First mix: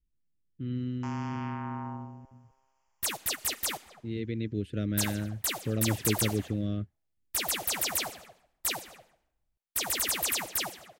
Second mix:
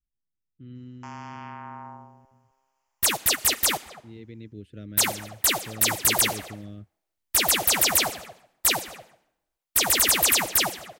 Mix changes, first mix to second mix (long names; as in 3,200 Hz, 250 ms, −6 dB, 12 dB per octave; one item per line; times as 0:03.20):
speech −9.0 dB
second sound +9.5 dB